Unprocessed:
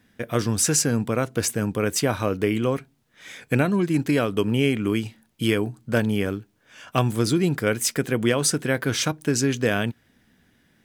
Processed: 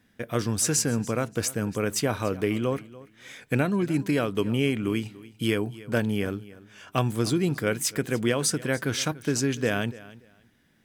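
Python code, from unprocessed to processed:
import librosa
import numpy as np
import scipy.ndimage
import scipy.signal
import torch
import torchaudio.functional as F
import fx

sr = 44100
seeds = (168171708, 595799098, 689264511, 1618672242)

y = fx.echo_feedback(x, sr, ms=289, feedback_pct=20, wet_db=-19)
y = F.gain(torch.from_numpy(y), -3.5).numpy()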